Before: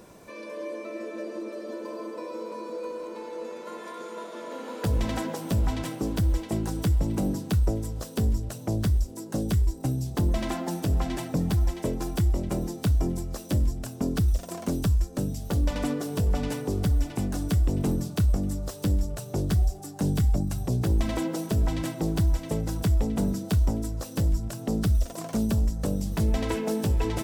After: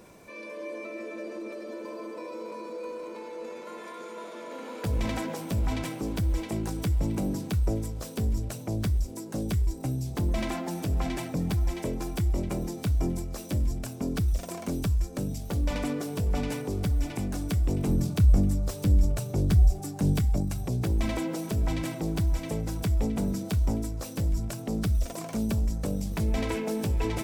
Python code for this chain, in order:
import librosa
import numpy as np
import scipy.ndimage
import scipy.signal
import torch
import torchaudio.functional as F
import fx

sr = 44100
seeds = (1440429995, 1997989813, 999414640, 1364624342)

y = fx.low_shelf(x, sr, hz=210.0, db=7.5, at=(17.89, 20.14))
y = fx.transient(y, sr, attack_db=-2, sustain_db=4)
y = fx.peak_eq(y, sr, hz=2300.0, db=6.5, octaves=0.22)
y = y * librosa.db_to_amplitude(-2.5)